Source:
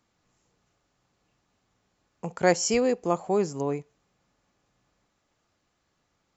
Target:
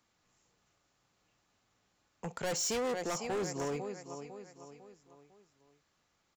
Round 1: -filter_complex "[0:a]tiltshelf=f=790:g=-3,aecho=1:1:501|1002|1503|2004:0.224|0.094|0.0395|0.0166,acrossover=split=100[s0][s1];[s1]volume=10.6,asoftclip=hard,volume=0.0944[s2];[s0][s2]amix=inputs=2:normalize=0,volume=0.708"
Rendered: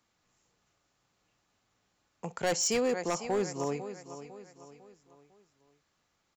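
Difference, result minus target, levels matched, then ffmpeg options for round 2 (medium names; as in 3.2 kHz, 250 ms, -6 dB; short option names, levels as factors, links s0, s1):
overload inside the chain: distortion -5 dB
-filter_complex "[0:a]tiltshelf=f=790:g=-3,aecho=1:1:501|1002|1503|2004:0.224|0.094|0.0395|0.0166,acrossover=split=100[s0][s1];[s1]volume=26.6,asoftclip=hard,volume=0.0376[s2];[s0][s2]amix=inputs=2:normalize=0,volume=0.708"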